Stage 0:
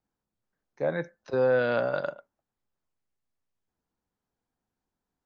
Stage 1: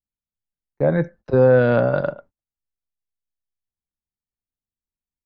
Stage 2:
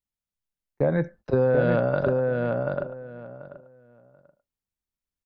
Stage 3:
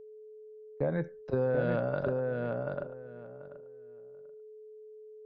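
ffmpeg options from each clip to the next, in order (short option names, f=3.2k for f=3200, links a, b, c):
-af "agate=range=-29dB:threshold=-53dB:ratio=16:detection=peak,aemphasis=mode=reproduction:type=riaa,volume=6.5dB"
-filter_complex "[0:a]acompressor=threshold=-19dB:ratio=4,asplit=2[a][b];[b]adelay=736,lowpass=f=2.8k:p=1,volume=-3dB,asplit=2[c][d];[d]adelay=736,lowpass=f=2.8k:p=1,volume=0.19,asplit=2[e][f];[f]adelay=736,lowpass=f=2.8k:p=1,volume=0.19[g];[a][c][e][g]amix=inputs=4:normalize=0"
-af "aeval=exprs='val(0)+0.0112*sin(2*PI*430*n/s)':c=same,volume=-8dB"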